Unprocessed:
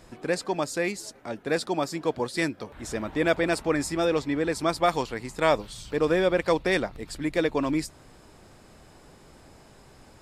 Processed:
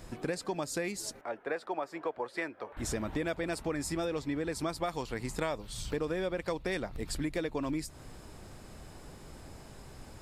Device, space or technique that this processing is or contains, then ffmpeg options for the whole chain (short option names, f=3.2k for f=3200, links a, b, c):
ASMR close-microphone chain: -filter_complex "[0:a]asettb=1/sr,asplit=3[a][b][c];[a]atrim=end=1.214[d];[b]atrim=start=1.21:end=2.77,asetpts=PTS-STARTPTS,afade=t=in:d=0.004:c=qsin,afade=t=out:st=1.556:d=0.004:c=qsin,acrossover=split=410 2400:gain=0.0891 1 0.1[e][f][g];[e][f][g]amix=inputs=3:normalize=0[h];[c]atrim=start=2.766[i];[d][h]acrossfade=d=0.004:c1=hsin:c2=qsin[j];[j][i]acrossfade=d=0.004:c1=qsin:c2=hsin,lowshelf=f=140:g=7,acompressor=threshold=-31dB:ratio=6,highshelf=f=9.6k:g=6"